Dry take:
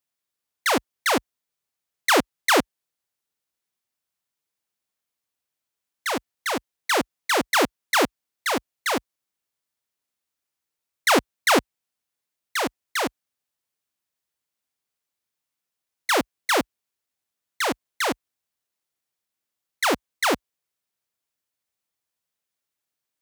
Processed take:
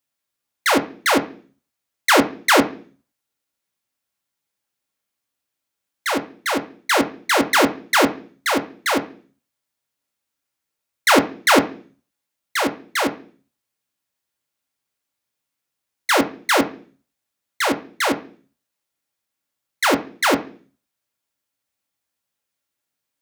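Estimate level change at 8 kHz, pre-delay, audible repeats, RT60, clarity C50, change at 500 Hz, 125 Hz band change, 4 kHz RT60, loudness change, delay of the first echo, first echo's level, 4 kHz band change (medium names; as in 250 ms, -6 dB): +3.0 dB, 3 ms, no echo, 0.45 s, 15.0 dB, +4.5 dB, +5.0 dB, 0.45 s, +4.5 dB, no echo, no echo, +3.5 dB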